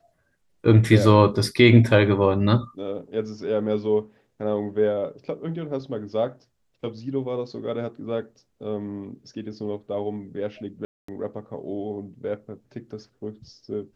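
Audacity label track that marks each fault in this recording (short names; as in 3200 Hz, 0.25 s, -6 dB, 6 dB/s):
10.850000	11.080000	gap 0.234 s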